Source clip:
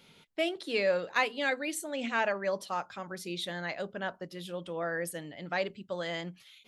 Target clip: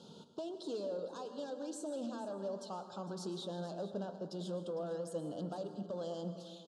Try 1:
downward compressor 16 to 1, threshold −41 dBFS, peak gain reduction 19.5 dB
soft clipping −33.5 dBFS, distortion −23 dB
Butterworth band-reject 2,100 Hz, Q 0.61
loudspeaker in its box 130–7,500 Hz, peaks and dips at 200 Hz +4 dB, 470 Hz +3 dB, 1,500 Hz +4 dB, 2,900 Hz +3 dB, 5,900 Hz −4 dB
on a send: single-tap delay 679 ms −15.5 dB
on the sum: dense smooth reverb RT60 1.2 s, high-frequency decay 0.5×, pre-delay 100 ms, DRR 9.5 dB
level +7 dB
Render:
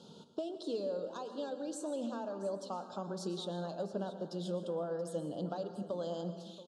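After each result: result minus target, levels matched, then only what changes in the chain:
echo 225 ms late; soft clipping: distortion −11 dB
change: single-tap delay 454 ms −15.5 dB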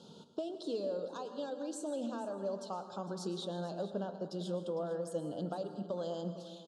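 soft clipping: distortion −11 dB
change: soft clipping −43 dBFS, distortion −12 dB

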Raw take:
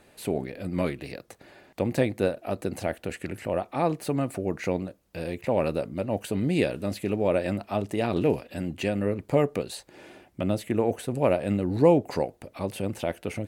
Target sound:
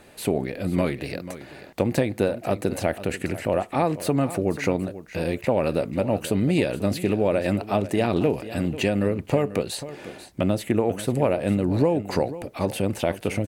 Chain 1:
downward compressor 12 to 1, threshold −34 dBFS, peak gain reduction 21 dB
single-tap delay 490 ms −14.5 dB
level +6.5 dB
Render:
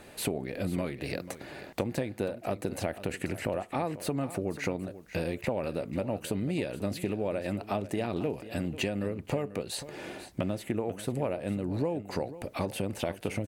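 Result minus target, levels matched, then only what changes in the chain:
downward compressor: peak gain reduction +10 dB
change: downward compressor 12 to 1, threshold −23 dBFS, peak gain reduction 11 dB

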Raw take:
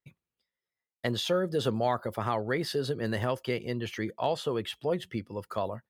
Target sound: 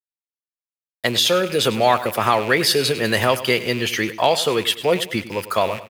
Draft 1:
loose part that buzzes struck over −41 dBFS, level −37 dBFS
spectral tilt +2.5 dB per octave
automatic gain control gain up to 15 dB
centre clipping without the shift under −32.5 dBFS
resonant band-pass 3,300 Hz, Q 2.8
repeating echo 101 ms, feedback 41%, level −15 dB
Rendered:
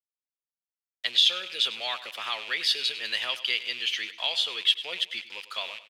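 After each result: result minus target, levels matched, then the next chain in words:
centre clipping without the shift: distortion +10 dB; 4,000 Hz band +5.5 dB
loose part that buzzes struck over −41 dBFS, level −37 dBFS
spectral tilt +2.5 dB per octave
automatic gain control gain up to 15 dB
centre clipping without the shift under −40 dBFS
resonant band-pass 3,300 Hz, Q 2.8
repeating echo 101 ms, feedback 41%, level −15 dB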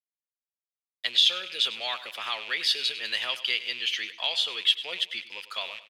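4,000 Hz band +5.5 dB
loose part that buzzes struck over −41 dBFS, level −37 dBFS
spectral tilt +2.5 dB per octave
automatic gain control gain up to 15 dB
centre clipping without the shift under −40 dBFS
repeating echo 101 ms, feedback 41%, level −15 dB

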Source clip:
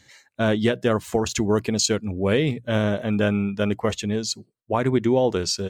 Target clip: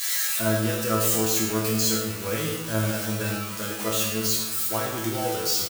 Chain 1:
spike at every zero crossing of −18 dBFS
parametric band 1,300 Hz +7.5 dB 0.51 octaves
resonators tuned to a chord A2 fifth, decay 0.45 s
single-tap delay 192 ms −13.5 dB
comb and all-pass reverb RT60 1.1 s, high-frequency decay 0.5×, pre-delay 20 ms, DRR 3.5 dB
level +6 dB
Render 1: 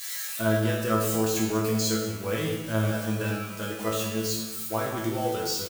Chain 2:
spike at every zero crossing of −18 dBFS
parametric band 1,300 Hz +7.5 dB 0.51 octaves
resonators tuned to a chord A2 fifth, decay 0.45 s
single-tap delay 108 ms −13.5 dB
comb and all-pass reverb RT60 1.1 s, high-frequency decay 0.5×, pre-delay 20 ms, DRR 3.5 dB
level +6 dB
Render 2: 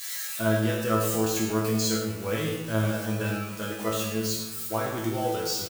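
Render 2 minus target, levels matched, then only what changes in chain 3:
spike at every zero crossing: distortion −8 dB
change: spike at every zero crossing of −9.5 dBFS

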